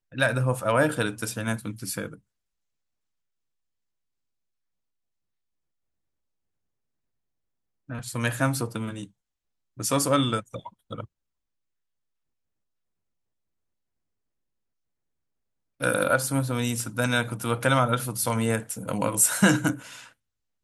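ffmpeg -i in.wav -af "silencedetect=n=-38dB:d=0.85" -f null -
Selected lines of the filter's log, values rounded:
silence_start: 2.14
silence_end: 7.90 | silence_duration: 5.76
silence_start: 11.05
silence_end: 15.80 | silence_duration: 4.75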